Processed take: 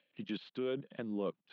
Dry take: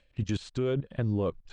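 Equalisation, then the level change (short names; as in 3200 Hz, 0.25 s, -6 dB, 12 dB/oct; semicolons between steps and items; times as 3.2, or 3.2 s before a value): steep high-pass 170 Hz 36 dB/oct; ladder low-pass 4000 Hz, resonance 45%; air absorption 130 m; +2.5 dB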